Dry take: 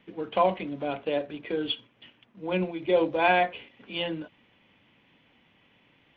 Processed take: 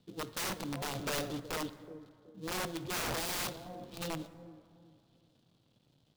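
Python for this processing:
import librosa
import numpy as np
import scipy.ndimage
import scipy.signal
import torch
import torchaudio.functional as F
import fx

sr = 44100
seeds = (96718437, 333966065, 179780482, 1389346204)

y = fx.dead_time(x, sr, dead_ms=0.24)
y = fx.transient(y, sr, attack_db=-8, sustain_db=8, at=(2.83, 3.93))
y = fx.graphic_eq(y, sr, hz=(125, 1000, 2000, 4000), db=(10, -4, -12, 9))
y = fx.echo_bbd(y, sr, ms=373, stages=2048, feedback_pct=34, wet_db=-14)
y = (np.mod(10.0 ** (25.0 / 20.0) * y + 1.0, 2.0) - 1.0) / 10.0 ** (25.0 / 20.0)
y = fx.power_curve(y, sr, exponent=0.5, at=(0.95, 1.4))
y = fx.rev_plate(y, sr, seeds[0], rt60_s=2.2, hf_ratio=0.45, predelay_ms=0, drr_db=14.5)
y = y * librosa.db_to_amplitude(-6.0)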